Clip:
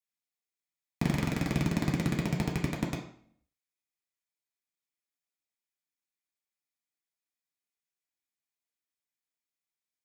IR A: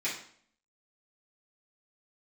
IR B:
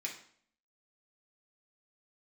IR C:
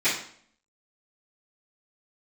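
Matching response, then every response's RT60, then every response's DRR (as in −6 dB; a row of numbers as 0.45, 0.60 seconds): B; 0.55, 0.55, 0.55 seconds; −10.0, −2.0, −18.0 decibels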